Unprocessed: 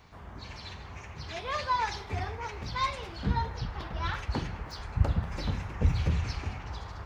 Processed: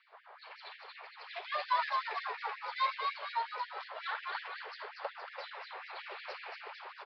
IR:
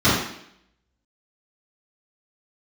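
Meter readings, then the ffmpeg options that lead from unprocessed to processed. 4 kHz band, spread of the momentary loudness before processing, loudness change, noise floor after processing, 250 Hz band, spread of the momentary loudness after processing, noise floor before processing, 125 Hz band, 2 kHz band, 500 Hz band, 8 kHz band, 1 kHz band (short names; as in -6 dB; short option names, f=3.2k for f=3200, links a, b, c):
-3.5 dB, 14 LU, -5.5 dB, -56 dBFS, under -30 dB, 16 LU, -46 dBFS, under -40 dB, -0.5 dB, -6.0 dB, n/a, -1.5 dB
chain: -filter_complex "[0:a]highpass=250,adynamicsmooth=sensitivity=4.5:basefreq=3.3k,asplit=9[a][b][c][d][e][f][g][h][i];[b]adelay=233,afreqshift=61,volume=-4dB[j];[c]adelay=466,afreqshift=122,volume=-8.9dB[k];[d]adelay=699,afreqshift=183,volume=-13.8dB[l];[e]adelay=932,afreqshift=244,volume=-18.6dB[m];[f]adelay=1165,afreqshift=305,volume=-23.5dB[n];[g]adelay=1398,afreqshift=366,volume=-28.4dB[o];[h]adelay=1631,afreqshift=427,volume=-33.3dB[p];[i]adelay=1864,afreqshift=488,volume=-38.2dB[q];[a][j][k][l][m][n][o][p][q]amix=inputs=9:normalize=0,aresample=11025,aresample=44100,afftfilt=real='re*gte(b*sr/1024,380*pow(1700/380,0.5+0.5*sin(2*PI*5.5*pts/sr)))':imag='im*gte(b*sr/1024,380*pow(1700/380,0.5+0.5*sin(2*PI*5.5*pts/sr)))':win_size=1024:overlap=0.75,volume=-1.5dB"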